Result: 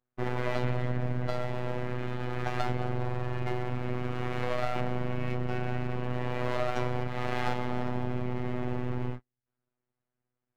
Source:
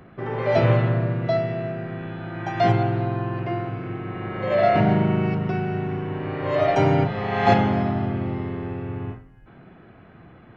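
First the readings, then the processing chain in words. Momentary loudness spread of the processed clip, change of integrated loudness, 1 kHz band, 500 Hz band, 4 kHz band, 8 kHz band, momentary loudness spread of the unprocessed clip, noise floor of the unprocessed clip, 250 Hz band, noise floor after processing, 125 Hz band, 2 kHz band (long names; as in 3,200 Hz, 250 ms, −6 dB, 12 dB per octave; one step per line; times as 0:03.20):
3 LU, −10.0 dB, −10.5 dB, −11.0 dB, −6.0 dB, can't be measured, 13 LU, −49 dBFS, −10.5 dB, below −85 dBFS, −9.0 dB, −7.5 dB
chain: hum removal 73.84 Hz, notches 36
downward compressor 6 to 1, threshold −28 dBFS, peak gain reduction 15.5 dB
high-pass filter 55 Hz 12 dB per octave
noise gate −36 dBFS, range −40 dB
half-wave rectification
phases set to zero 124 Hz
level +6 dB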